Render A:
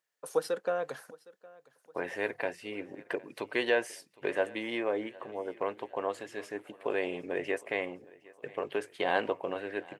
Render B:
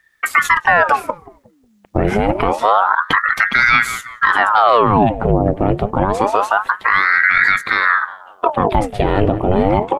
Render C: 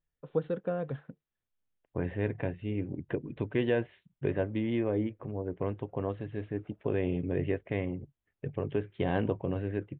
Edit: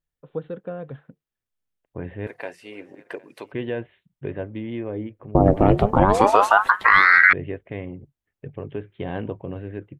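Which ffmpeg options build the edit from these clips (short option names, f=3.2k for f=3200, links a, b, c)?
-filter_complex "[2:a]asplit=3[a][b][c];[a]atrim=end=2.272[d];[0:a]atrim=start=2.268:end=3.522[e];[b]atrim=start=3.518:end=5.352[f];[1:a]atrim=start=5.348:end=7.332[g];[c]atrim=start=7.328[h];[d][e]acrossfade=d=0.004:c1=hsin:c2=hsin[i];[i][f]acrossfade=d=0.004:c1=hsin:c2=hsin[j];[j][g]acrossfade=d=0.004:c1=hsin:c2=hsin[k];[k][h]acrossfade=d=0.004:c1=hsin:c2=hsin"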